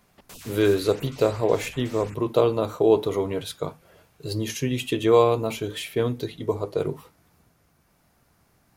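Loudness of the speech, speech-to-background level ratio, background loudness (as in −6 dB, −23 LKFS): −24.5 LKFS, 19.5 dB, −44.0 LKFS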